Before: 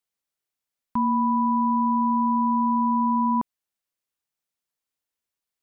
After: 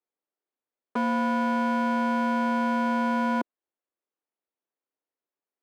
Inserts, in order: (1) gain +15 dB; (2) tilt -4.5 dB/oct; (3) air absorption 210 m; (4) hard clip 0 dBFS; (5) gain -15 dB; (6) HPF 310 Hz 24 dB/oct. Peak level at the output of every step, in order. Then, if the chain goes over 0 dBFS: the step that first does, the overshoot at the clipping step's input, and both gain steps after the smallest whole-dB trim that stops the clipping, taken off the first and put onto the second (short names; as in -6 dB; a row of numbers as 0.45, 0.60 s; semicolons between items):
-0.5, +8.5, +8.0, 0.0, -15.0, -17.0 dBFS; step 2, 8.0 dB; step 1 +7 dB, step 5 -7 dB